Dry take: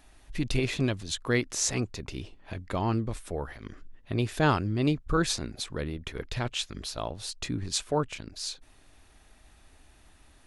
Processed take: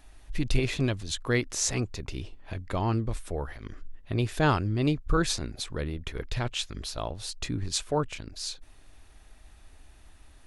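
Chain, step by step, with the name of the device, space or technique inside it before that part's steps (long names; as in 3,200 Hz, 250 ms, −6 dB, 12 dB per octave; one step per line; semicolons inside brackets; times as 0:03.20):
low shelf boost with a cut just above (low-shelf EQ 71 Hz +7.5 dB; parametric band 210 Hz −2 dB)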